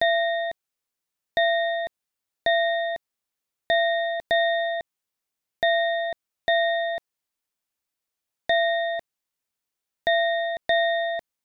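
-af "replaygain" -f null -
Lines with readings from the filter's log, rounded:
track_gain = +4.2 dB
track_peak = 0.183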